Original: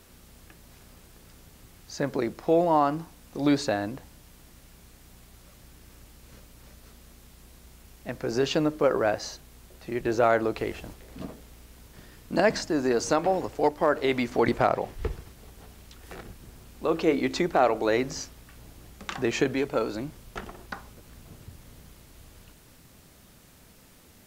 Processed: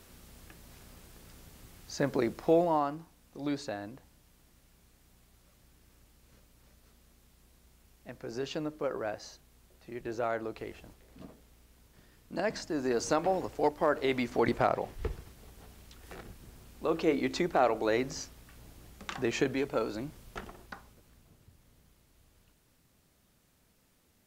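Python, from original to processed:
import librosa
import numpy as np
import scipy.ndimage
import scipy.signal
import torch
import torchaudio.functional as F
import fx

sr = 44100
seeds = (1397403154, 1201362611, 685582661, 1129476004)

y = fx.gain(x, sr, db=fx.line((2.47, -1.5), (3.0, -11.0), (12.33, -11.0), (13.04, -4.5), (20.37, -4.5), (21.34, -14.0)))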